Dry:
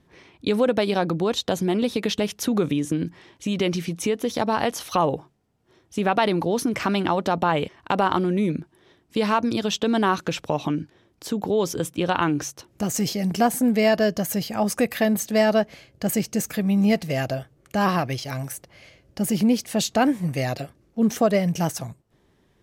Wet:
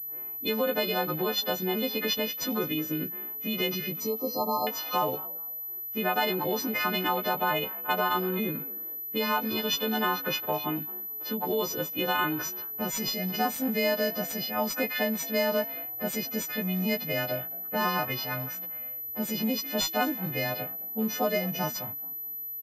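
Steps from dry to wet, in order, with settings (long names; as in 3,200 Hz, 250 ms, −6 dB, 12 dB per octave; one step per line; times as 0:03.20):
every partial snapped to a pitch grid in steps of 3 semitones
downward compressor 2 to 1, threshold −28 dBFS, peak gain reduction 9 dB
0:04.00–0:04.67: linear-phase brick-wall band-stop 1,300–3,800 Hz
on a send: echo with shifted repeats 218 ms, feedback 32%, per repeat +54 Hz, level −20 dB
on the sum: low-pass that shuts in the quiet parts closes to 720 Hz, open at −20 dBFS
low-shelf EQ 140 Hz −10.5 dB
switching amplifier with a slow clock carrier 12,000 Hz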